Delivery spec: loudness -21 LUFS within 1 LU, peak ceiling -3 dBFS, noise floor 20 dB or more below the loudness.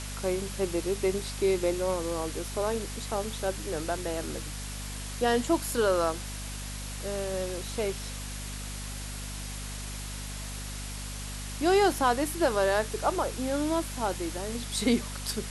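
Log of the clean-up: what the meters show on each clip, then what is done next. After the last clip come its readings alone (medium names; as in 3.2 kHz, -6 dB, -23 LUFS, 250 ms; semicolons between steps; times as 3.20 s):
hum 50 Hz; highest harmonic 250 Hz; hum level -36 dBFS; noise floor -38 dBFS; noise floor target -51 dBFS; loudness -30.5 LUFS; peak level -12.0 dBFS; loudness target -21.0 LUFS
-> hum notches 50/100/150/200/250 Hz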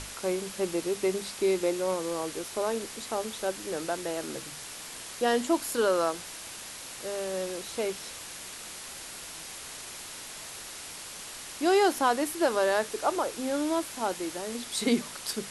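hum not found; noise floor -42 dBFS; noise floor target -51 dBFS
-> noise reduction 9 dB, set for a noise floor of -42 dBFS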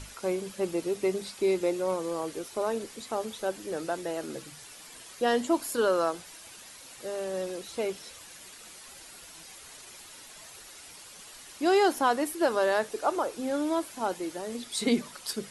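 noise floor -49 dBFS; noise floor target -50 dBFS
-> noise reduction 6 dB, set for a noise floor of -49 dBFS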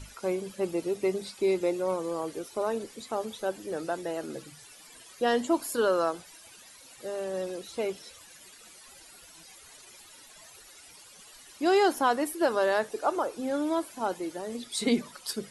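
noise floor -52 dBFS; loudness -30.0 LUFS; peak level -13.0 dBFS; loudness target -21.0 LUFS
-> trim +9 dB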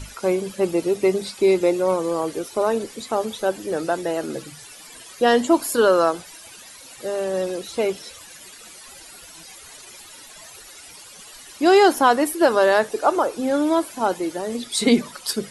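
loudness -21.0 LUFS; peak level -4.0 dBFS; noise floor -43 dBFS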